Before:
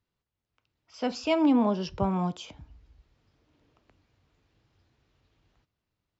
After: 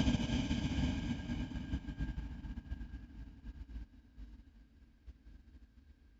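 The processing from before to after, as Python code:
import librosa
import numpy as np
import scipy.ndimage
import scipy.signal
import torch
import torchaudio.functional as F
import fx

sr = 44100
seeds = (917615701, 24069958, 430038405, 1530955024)

p1 = fx.paulstretch(x, sr, seeds[0], factor=19.0, window_s=0.5, from_s=2.6)
p2 = fx.small_body(p1, sr, hz=(240.0, 1600.0), ring_ms=60, db=17)
p3 = p2 + fx.echo_wet_highpass(p2, sr, ms=224, feedback_pct=64, hz=1800.0, wet_db=-3.0, dry=0)
p4 = fx.upward_expand(p3, sr, threshold_db=-56.0, expansion=2.5)
y = p4 * librosa.db_to_amplitude(14.5)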